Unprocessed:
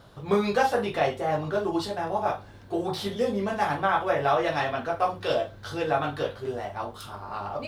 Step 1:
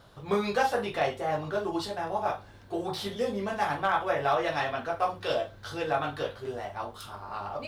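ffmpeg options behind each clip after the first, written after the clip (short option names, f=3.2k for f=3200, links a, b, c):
-af "equalizer=f=190:w=0.36:g=-3.5,volume=14.5dB,asoftclip=hard,volume=-14.5dB,volume=-1.5dB"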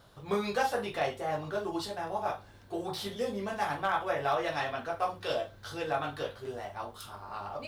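-af "highshelf=f=6.7k:g=5.5,volume=-3.5dB"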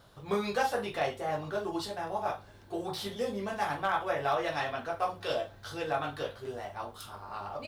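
-filter_complex "[0:a]asplit=2[a][b];[b]adelay=932.9,volume=-30dB,highshelf=f=4k:g=-21[c];[a][c]amix=inputs=2:normalize=0"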